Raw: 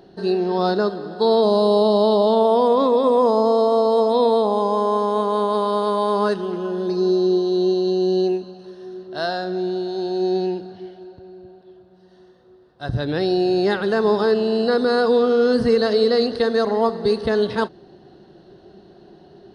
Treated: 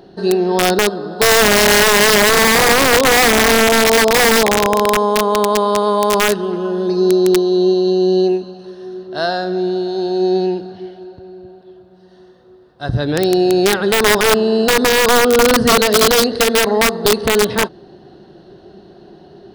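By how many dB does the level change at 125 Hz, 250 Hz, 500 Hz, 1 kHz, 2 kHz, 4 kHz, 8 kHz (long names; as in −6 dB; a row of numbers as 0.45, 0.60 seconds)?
+6.0 dB, +4.5 dB, +3.5 dB, +5.5 dB, +17.0 dB, +13.5 dB, can't be measured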